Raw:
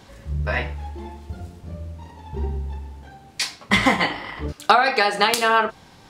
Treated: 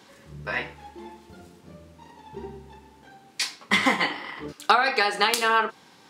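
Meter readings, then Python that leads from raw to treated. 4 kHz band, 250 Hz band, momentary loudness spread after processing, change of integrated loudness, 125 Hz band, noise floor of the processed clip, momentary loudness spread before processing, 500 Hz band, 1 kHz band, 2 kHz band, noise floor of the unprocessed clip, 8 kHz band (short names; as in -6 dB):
-2.5 dB, -5.5 dB, 21 LU, -2.5 dB, -14.0 dB, -54 dBFS, 20 LU, -5.5 dB, -4.0 dB, -2.5 dB, -49 dBFS, -2.5 dB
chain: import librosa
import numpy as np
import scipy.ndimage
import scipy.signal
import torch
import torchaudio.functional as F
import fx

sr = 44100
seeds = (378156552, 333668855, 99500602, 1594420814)

y = scipy.signal.sosfilt(scipy.signal.butter(2, 230.0, 'highpass', fs=sr, output='sos'), x)
y = fx.peak_eq(y, sr, hz=650.0, db=-6.5, octaves=0.44)
y = y * librosa.db_to_amplitude(-2.5)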